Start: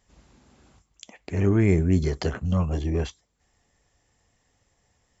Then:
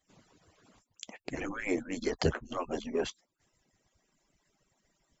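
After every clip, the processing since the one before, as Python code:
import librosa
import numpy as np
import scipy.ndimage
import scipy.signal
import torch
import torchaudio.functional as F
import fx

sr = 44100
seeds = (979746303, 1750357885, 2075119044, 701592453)

y = fx.hpss_only(x, sr, part='percussive')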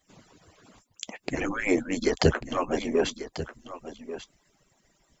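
y = x + 10.0 ** (-13.0 / 20.0) * np.pad(x, (int(1141 * sr / 1000.0), 0))[:len(x)]
y = F.gain(torch.from_numpy(y), 7.5).numpy()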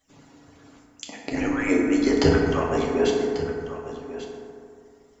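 y = fx.rev_fdn(x, sr, rt60_s=2.4, lf_ratio=1.0, hf_ratio=0.35, size_ms=21.0, drr_db=-2.5)
y = F.gain(torch.from_numpy(y), -1.5).numpy()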